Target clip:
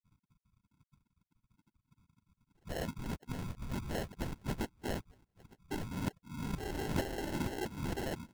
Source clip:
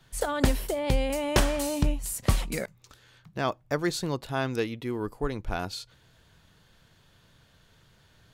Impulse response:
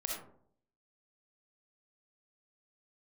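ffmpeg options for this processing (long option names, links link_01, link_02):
-filter_complex "[0:a]areverse,lowpass=frequency=3200:width_type=q:width=0.5098,lowpass=frequency=3200:width_type=q:width=0.6013,lowpass=frequency=3200:width_type=q:width=0.9,lowpass=frequency=3200:width_type=q:width=2.563,afreqshift=-3800,acrossover=split=2600[link_01][link_02];[link_01]equalizer=frequency=560:width=7.5:gain=-10.5[link_03];[link_02]acompressor=threshold=-38dB:ratio=6[link_04];[link_03][link_04]amix=inputs=2:normalize=0,afftfilt=real='re*gte(hypot(re,im),0.00891)':imag='im*gte(hypot(re,im),0.00891)':win_size=1024:overlap=0.75,asplit=2[link_05][link_06];[link_06]adelay=901,lowpass=frequency=1000:poles=1,volume=-16dB,asplit=2[link_07][link_08];[link_08]adelay=901,lowpass=frequency=1000:poles=1,volume=0.2[link_09];[link_07][link_09]amix=inputs=2:normalize=0[link_10];[link_05][link_10]amix=inputs=2:normalize=0,aexciter=amount=4.3:drive=9:freq=2000,acrossover=split=300 2600:gain=0.0794 1 0.224[link_11][link_12][link_13];[link_11][link_12][link_13]amix=inputs=3:normalize=0,afftfilt=real='hypot(re,im)*cos(2*PI*random(0))':imag='hypot(re,im)*sin(2*PI*random(1))':win_size=512:overlap=0.75,acrusher=samples=37:mix=1:aa=0.000001,volume=-7.5dB"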